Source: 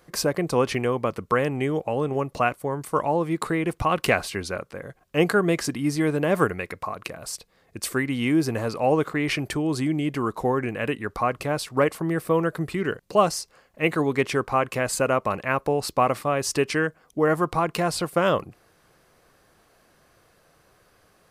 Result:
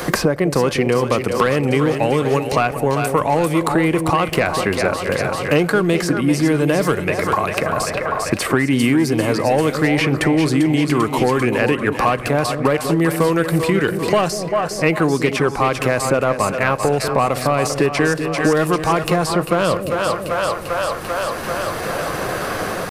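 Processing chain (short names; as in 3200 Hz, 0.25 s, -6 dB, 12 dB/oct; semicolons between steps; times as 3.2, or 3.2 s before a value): AGC gain up to 5.5 dB; in parallel at 0 dB: limiter -10 dBFS, peak gain reduction 7.5 dB; on the sum: soft clip -4.5 dBFS, distortion -19 dB; tempo 0.93×; split-band echo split 540 Hz, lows 0.193 s, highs 0.394 s, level -9 dB; on a send at -21 dB: reverb RT60 0.80 s, pre-delay 3 ms; on the sum: three-band squash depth 100%; gain -3 dB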